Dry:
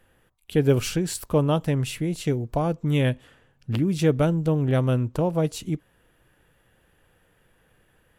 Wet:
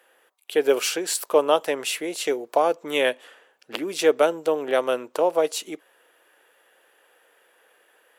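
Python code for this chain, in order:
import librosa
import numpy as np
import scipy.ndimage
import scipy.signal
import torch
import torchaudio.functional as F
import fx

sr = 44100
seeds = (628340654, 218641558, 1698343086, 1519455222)

p1 = scipy.signal.sosfilt(scipy.signal.butter(4, 420.0, 'highpass', fs=sr, output='sos'), x)
p2 = fx.rider(p1, sr, range_db=10, speed_s=2.0)
y = p1 + F.gain(torch.from_numpy(p2), 1.0).numpy()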